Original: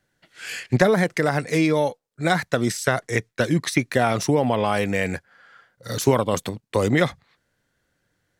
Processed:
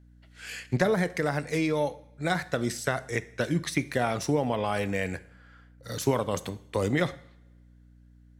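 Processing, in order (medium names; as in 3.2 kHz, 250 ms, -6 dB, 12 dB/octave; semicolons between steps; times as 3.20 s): two-slope reverb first 0.58 s, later 1.6 s, from -20 dB, DRR 13.5 dB; hum 60 Hz, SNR 25 dB; trim -7 dB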